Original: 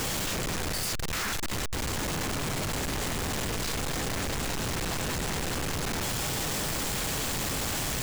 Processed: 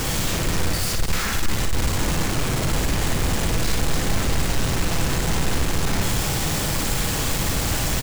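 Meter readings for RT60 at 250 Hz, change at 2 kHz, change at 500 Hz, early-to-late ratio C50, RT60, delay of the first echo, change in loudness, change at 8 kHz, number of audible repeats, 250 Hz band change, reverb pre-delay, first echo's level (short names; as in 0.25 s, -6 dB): none, +5.5 dB, +6.0 dB, none, none, 56 ms, +7.0 dB, +5.5 dB, 2, +8.0 dB, none, -5.0 dB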